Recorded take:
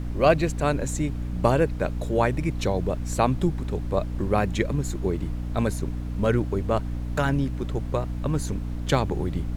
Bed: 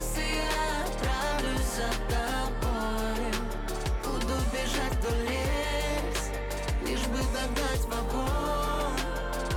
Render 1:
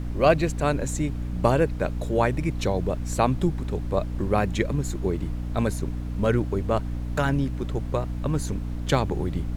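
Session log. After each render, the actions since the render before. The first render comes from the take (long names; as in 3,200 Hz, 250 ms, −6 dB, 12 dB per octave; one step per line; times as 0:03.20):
no processing that can be heard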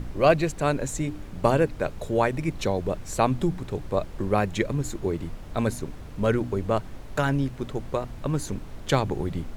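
hum removal 60 Hz, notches 5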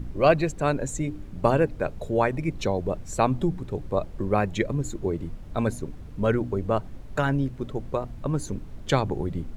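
broadband denoise 8 dB, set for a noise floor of −39 dBFS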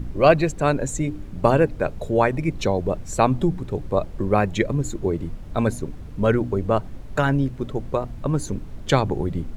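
level +4 dB
brickwall limiter −3 dBFS, peak gain reduction 0.5 dB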